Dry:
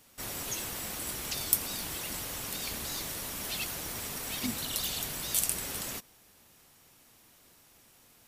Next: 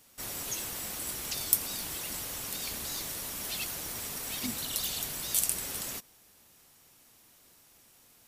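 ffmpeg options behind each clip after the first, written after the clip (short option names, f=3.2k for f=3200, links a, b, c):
-af "bass=f=250:g=-1,treble=f=4k:g=3,volume=-2dB"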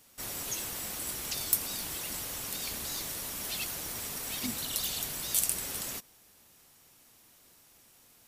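-af "asoftclip=type=hard:threshold=-12dB"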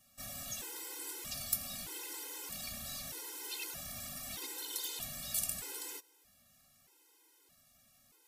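-af "afftfilt=real='re*gt(sin(2*PI*0.8*pts/sr)*(1-2*mod(floor(b*sr/1024/270),2)),0)':imag='im*gt(sin(2*PI*0.8*pts/sr)*(1-2*mod(floor(b*sr/1024/270),2)),0)':win_size=1024:overlap=0.75,volume=-3.5dB"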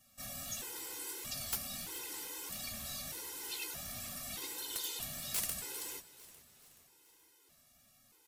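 -af "aeval=exprs='(mod(20*val(0)+1,2)-1)/20':c=same,flanger=delay=7.6:depth=8.8:regen=-48:speed=1.5:shape=sinusoidal,aecho=1:1:426|852|1278|1704:0.141|0.0678|0.0325|0.0156,volume=4.5dB"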